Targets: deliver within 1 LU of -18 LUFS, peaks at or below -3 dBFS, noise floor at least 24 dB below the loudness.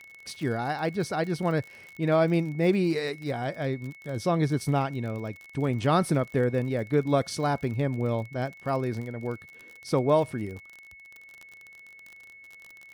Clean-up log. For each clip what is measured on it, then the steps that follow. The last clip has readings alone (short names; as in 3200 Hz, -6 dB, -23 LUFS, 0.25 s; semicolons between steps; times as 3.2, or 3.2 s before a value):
ticks 44/s; steady tone 2200 Hz; tone level -47 dBFS; loudness -28.0 LUFS; peak -10.5 dBFS; loudness target -18.0 LUFS
-> de-click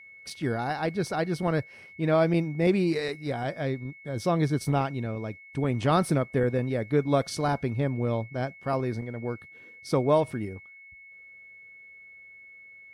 ticks 0.077/s; steady tone 2200 Hz; tone level -47 dBFS
-> notch 2200 Hz, Q 30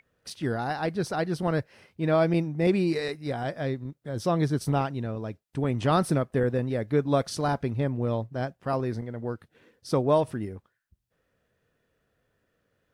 steady tone none; loudness -28.0 LUFS; peak -10.5 dBFS; loudness target -18.0 LUFS
-> gain +10 dB; limiter -3 dBFS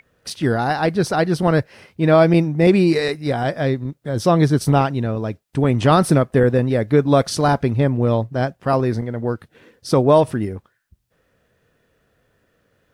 loudness -18.0 LUFS; peak -3.0 dBFS; noise floor -66 dBFS